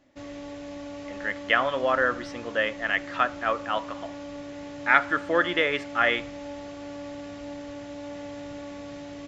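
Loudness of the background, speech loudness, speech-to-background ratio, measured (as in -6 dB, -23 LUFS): -39.0 LUFS, -25.5 LUFS, 13.5 dB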